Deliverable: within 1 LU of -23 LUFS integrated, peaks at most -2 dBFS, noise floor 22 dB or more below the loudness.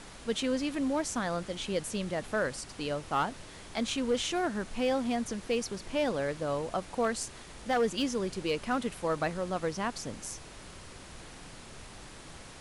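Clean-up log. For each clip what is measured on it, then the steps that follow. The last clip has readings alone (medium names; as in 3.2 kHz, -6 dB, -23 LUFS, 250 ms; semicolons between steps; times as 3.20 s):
clipped samples 0.4%; clipping level -21.5 dBFS; noise floor -48 dBFS; noise floor target -55 dBFS; loudness -32.5 LUFS; peak level -21.5 dBFS; loudness target -23.0 LUFS
-> clip repair -21.5 dBFS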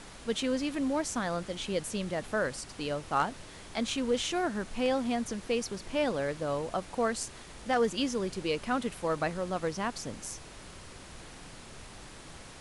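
clipped samples 0.0%; noise floor -48 dBFS; noise floor target -55 dBFS
-> noise print and reduce 7 dB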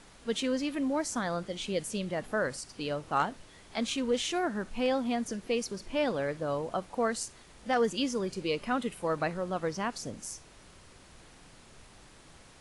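noise floor -55 dBFS; loudness -32.5 LUFS; peak level -14.0 dBFS; loudness target -23.0 LUFS
-> trim +9.5 dB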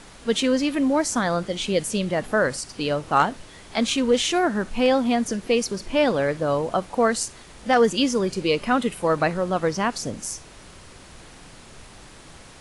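loudness -23.0 LUFS; peak level -4.5 dBFS; noise floor -46 dBFS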